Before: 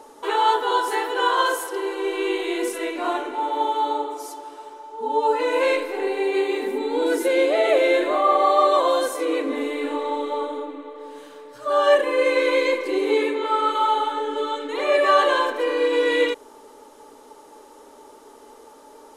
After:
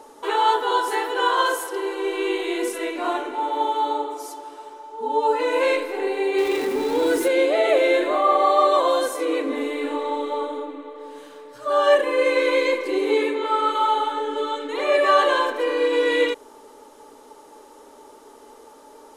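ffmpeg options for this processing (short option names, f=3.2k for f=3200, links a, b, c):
-filter_complex "[0:a]asettb=1/sr,asplit=3[a][b][c];[a]atrim=end=6.384[d];[b]atrim=start=6.38:end=7.28,asetpts=PTS-STARTPTS,afade=t=in:d=0.004:c=qsin,afade=t=out:st=0.896:d=0.004:c=qsin,aeval=exprs='val(0)+0.5*0.0355*sgn(val(0))':c=same[e];[c]atrim=start=7.276[f];[d][e]acrossfade=d=0.004:c1=hsin:c2=qsin[g];[g][f]acrossfade=d=0.004:c1=qsin:c2=hsin"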